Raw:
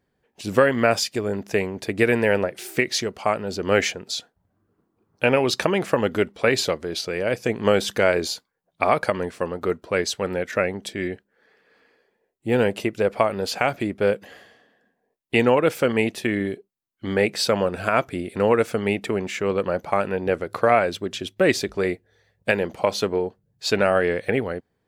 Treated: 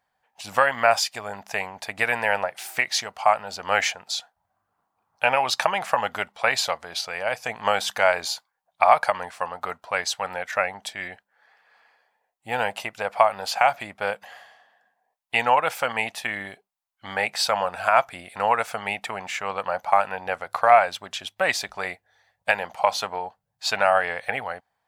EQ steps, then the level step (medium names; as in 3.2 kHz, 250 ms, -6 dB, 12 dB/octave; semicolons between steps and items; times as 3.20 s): resonant low shelf 540 Hz -13 dB, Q 3; 0.0 dB